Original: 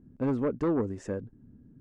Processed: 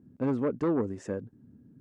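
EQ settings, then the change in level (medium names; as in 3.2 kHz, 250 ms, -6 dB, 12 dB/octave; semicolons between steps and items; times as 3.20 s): high-pass 96 Hz; 0.0 dB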